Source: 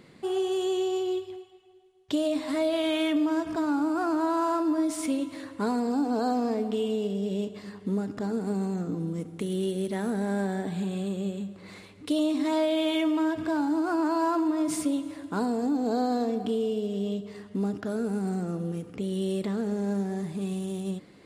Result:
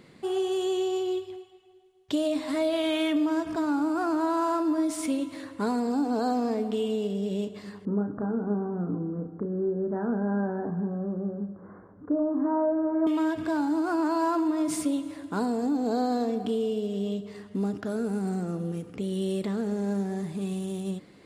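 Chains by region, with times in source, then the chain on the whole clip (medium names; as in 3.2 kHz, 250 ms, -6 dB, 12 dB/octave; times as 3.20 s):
7.85–13.07 s: steep low-pass 1.6 kHz 72 dB/octave + doubling 34 ms -7 dB
whole clip: none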